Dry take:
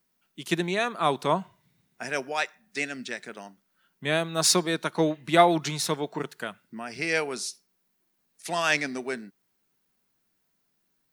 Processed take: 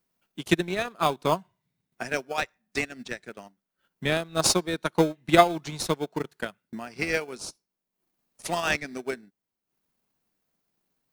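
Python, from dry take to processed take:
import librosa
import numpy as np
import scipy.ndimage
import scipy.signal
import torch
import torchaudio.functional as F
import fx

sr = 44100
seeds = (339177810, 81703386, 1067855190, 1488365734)

p1 = fx.sample_hold(x, sr, seeds[0], rate_hz=1900.0, jitter_pct=0)
p2 = x + F.gain(torch.from_numpy(p1), -10.5).numpy()
p3 = fx.transient(p2, sr, attack_db=8, sustain_db=-9)
y = F.gain(torch.from_numpy(p3), -4.5).numpy()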